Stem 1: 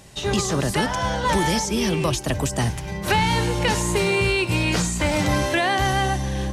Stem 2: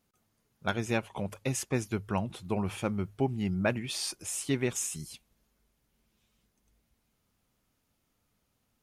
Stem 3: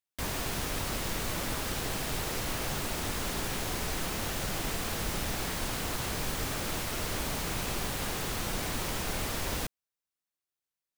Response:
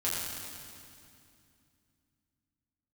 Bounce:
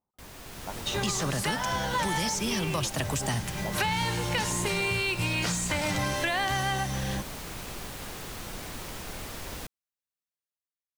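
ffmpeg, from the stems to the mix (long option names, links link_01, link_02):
-filter_complex "[0:a]highpass=100,equalizer=frequency=360:width_type=o:width=1.8:gain=-7,adelay=700,volume=0dB[link_01];[1:a]lowpass=frequency=920:width_type=q:width=4.1,volume=-13dB[link_02];[2:a]dynaudnorm=framelen=130:gausssize=9:maxgain=8dB,volume=-13.5dB[link_03];[link_01][link_02][link_03]amix=inputs=3:normalize=0,acompressor=threshold=-27dB:ratio=2.5"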